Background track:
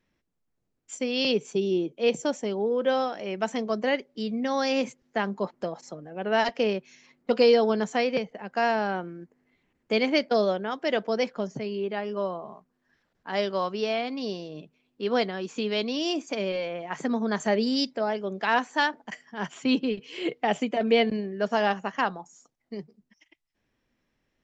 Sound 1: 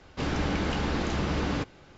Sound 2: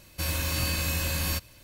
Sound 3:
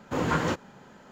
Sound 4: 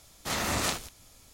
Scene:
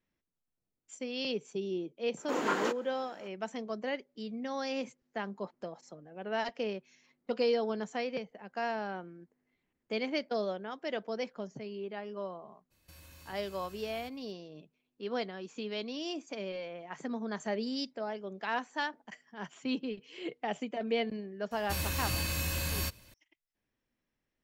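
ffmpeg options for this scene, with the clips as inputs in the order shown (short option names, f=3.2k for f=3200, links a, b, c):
-filter_complex "[2:a]asplit=2[a][b];[0:a]volume=-10dB[c];[3:a]highpass=f=270:w=0.5412,highpass=f=270:w=1.3066[d];[a]acompressor=threshold=-33dB:ratio=6:attack=3.2:release=140:knee=1:detection=peak[e];[d]atrim=end=1.11,asetpts=PTS-STARTPTS,volume=-3.5dB,afade=t=in:d=0.004:c=hsin,afade=t=out:st=1.106:d=0.004:c=hsin,adelay=2170[f];[e]atrim=end=1.63,asetpts=PTS-STARTPTS,volume=-18dB,afade=t=in:d=0.02,afade=t=out:st=1.61:d=0.02,adelay=12700[g];[b]atrim=end=1.63,asetpts=PTS-STARTPTS,volume=-5dB,afade=t=in:d=0.004:c=hsin,afade=t=out:st=1.626:d=0.004:c=hsin,adelay=21510[h];[c][f][g][h]amix=inputs=4:normalize=0"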